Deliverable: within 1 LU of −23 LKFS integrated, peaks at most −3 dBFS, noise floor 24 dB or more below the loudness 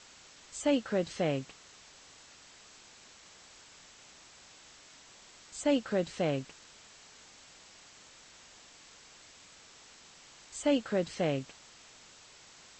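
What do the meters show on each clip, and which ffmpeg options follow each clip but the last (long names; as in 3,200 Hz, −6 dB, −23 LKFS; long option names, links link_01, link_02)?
background noise floor −56 dBFS; target noise floor −57 dBFS; integrated loudness −32.5 LKFS; sample peak −16.5 dBFS; target loudness −23.0 LKFS
→ -af "afftdn=noise_reduction=6:noise_floor=-56"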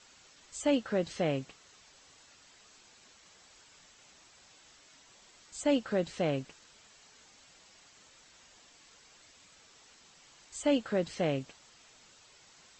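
background noise floor −60 dBFS; integrated loudness −32.5 LKFS; sample peak −16.5 dBFS; target loudness −23.0 LKFS
→ -af "volume=9.5dB"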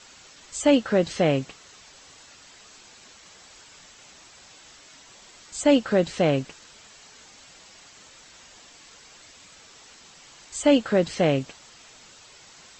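integrated loudness −23.0 LKFS; sample peak −7.0 dBFS; background noise floor −51 dBFS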